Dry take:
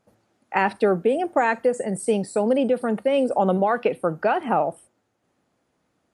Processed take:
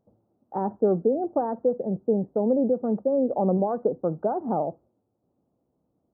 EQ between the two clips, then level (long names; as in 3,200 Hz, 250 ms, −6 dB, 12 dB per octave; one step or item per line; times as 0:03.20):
Gaussian smoothing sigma 11 samples
0.0 dB